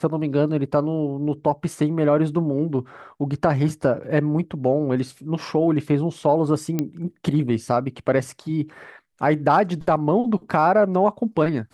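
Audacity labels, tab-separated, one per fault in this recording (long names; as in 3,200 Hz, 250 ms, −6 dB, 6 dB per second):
6.790000	6.790000	click −10 dBFS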